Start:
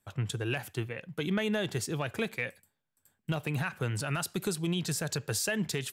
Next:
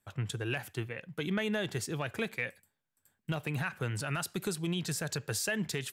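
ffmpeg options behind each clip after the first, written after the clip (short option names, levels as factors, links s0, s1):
-af "equalizer=f=1800:w=1.5:g=2.5,volume=0.75"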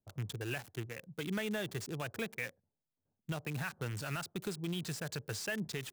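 -filter_complex "[0:a]acrossover=split=6800[s0][s1];[s1]acompressor=threshold=0.00501:ratio=4:attack=1:release=60[s2];[s0][s2]amix=inputs=2:normalize=0,acrossover=split=830[s3][s4];[s4]acrusher=bits=6:mix=0:aa=0.000001[s5];[s3][s5]amix=inputs=2:normalize=0,volume=0.596"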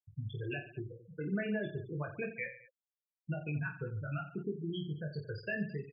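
-af "afftfilt=real='re*gte(hypot(re,im),0.0355)':imag='im*gte(hypot(re,im),0.0355)':win_size=1024:overlap=0.75,aecho=1:1:20|48|87.2|142.1|218.9:0.631|0.398|0.251|0.158|0.1"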